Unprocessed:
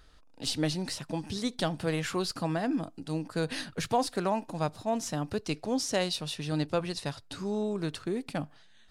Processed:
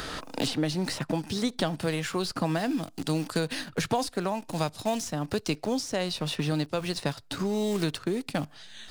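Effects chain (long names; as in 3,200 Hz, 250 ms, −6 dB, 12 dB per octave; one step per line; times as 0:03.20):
in parallel at −3.5 dB: centre clipping without the shift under −39 dBFS
on the sum: shaped tremolo triangle 1.3 Hz, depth 55%
multiband upward and downward compressor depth 100%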